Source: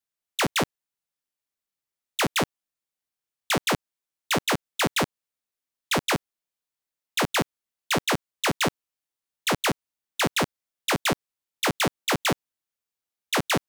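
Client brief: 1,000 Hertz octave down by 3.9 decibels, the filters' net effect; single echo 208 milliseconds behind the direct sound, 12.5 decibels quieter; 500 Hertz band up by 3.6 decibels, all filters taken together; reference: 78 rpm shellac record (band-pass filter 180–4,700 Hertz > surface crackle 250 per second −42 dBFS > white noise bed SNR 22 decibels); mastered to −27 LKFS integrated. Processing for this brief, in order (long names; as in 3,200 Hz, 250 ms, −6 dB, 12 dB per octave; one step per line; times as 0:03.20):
band-pass filter 180–4,700 Hz
parametric band 500 Hz +6.5 dB
parametric band 1,000 Hz −7.5 dB
single-tap delay 208 ms −12.5 dB
surface crackle 250 per second −42 dBFS
white noise bed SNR 22 dB
level +0.5 dB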